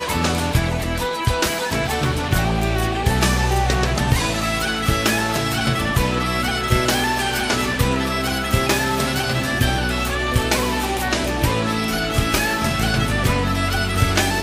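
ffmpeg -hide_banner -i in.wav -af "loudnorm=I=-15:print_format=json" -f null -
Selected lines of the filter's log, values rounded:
"input_i" : "-19.7",
"input_tp" : "-4.5",
"input_lra" : "0.8",
"input_thresh" : "-29.7",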